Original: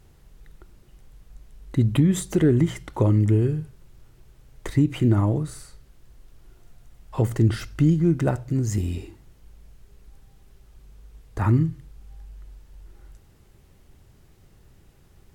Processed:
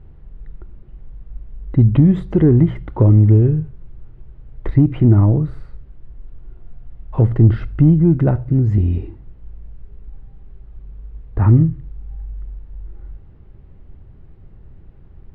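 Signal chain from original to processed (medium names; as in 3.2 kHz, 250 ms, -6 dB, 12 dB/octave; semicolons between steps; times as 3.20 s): distance through air 410 m; in parallel at -4.5 dB: saturation -17.5 dBFS, distortion -13 dB; on the sum: tilt EQ -2 dB/octave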